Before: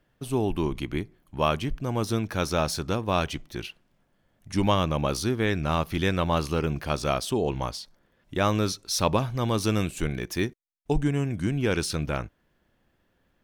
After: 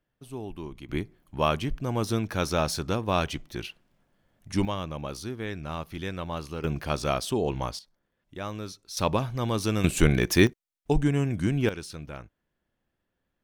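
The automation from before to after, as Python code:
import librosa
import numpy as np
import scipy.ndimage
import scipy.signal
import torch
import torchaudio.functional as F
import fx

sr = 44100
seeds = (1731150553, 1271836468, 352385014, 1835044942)

y = fx.gain(x, sr, db=fx.steps((0.0, -11.5), (0.89, -0.5), (4.65, -9.0), (6.64, -1.0), (7.79, -11.5), (8.97, -2.0), (9.84, 8.0), (10.47, 1.0), (11.69, -11.0)))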